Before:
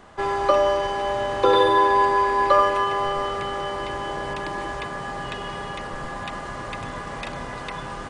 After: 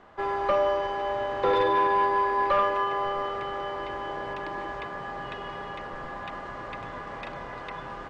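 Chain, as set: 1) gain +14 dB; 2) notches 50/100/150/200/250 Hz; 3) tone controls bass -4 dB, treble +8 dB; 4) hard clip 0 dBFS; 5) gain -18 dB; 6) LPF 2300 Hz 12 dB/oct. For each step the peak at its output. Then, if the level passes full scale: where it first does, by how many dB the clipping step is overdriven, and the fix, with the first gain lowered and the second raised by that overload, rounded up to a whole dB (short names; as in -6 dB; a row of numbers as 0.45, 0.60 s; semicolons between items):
+10.0, +10.0, +10.0, 0.0, -18.0, -17.5 dBFS; step 1, 10.0 dB; step 1 +4 dB, step 5 -8 dB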